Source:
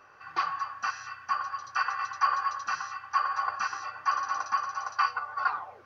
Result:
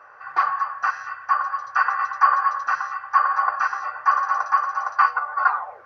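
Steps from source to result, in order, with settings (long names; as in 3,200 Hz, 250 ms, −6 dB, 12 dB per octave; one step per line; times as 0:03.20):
flat-topped bell 990 Hz +13 dB 2.4 octaves
level −4 dB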